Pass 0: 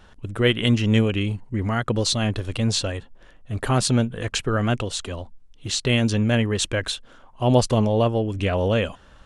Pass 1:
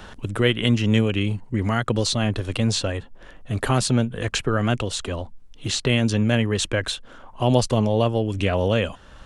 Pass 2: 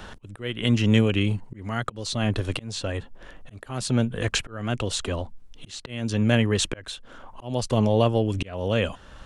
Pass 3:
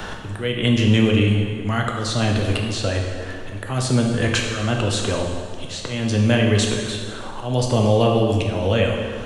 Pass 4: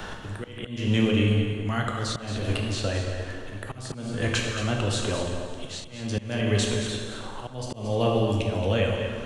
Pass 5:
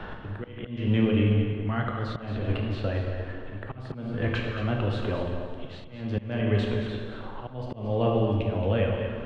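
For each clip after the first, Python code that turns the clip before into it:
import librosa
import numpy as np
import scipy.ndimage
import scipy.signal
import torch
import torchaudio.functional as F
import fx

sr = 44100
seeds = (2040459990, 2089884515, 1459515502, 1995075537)

y1 = fx.band_squash(x, sr, depth_pct=40)
y2 = fx.auto_swell(y1, sr, attack_ms=433.0)
y3 = fx.rev_plate(y2, sr, seeds[0], rt60_s=1.5, hf_ratio=0.8, predelay_ms=0, drr_db=0.0)
y3 = fx.band_squash(y3, sr, depth_pct=40)
y3 = y3 * librosa.db_to_amplitude(2.5)
y4 = fx.auto_swell(y3, sr, attack_ms=345.0)
y4 = y4 + 10.0 ** (-9.5 / 20.0) * np.pad(y4, (int(226 * sr / 1000.0), 0))[:len(y4)]
y4 = y4 * librosa.db_to_amplitude(-5.5)
y5 = fx.air_absorb(y4, sr, metres=410.0)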